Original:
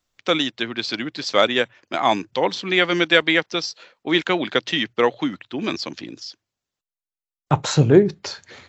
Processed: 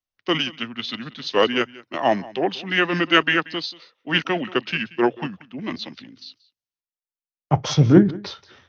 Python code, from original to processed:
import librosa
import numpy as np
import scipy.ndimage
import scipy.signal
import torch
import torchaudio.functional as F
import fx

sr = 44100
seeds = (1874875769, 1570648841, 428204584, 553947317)

y = fx.formant_shift(x, sr, semitones=-3)
y = y + 10.0 ** (-18.5 / 20.0) * np.pad(y, (int(183 * sr / 1000.0), 0))[:len(y)]
y = fx.band_widen(y, sr, depth_pct=40)
y = F.gain(torch.from_numpy(y), -1.5).numpy()